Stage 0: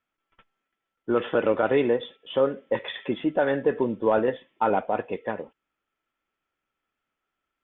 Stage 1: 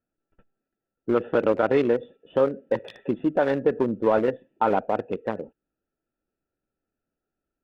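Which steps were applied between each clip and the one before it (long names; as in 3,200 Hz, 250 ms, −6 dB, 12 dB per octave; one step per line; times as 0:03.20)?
adaptive Wiener filter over 41 samples
in parallel at −0.5 dB: downward compressor, threshold −32 dBFS, peak gain reduction 14 dB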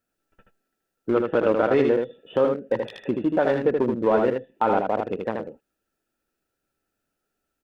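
single-tap delay 78 ms −4.5 dB
one half of a high-frequency compander encoder only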